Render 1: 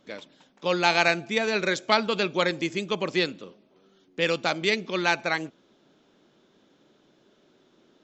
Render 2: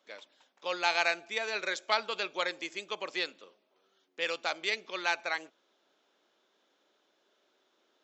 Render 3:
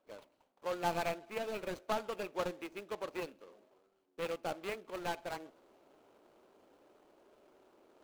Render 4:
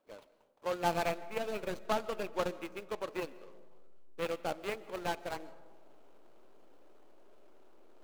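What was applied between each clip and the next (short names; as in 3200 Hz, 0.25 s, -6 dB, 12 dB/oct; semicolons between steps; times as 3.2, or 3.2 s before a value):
HPF 580 Hz 12 dB/oct; gain -6 dB
median filter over 25 samples; reverse; upward compressor, threshold -53 dBFS; reverse
in parallel at -6 dB: backlash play -34 dBFS; on the sum: digital reverb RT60 1.5 s, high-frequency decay 0.3×, pre-delay 0.1 s, DRR 18 dB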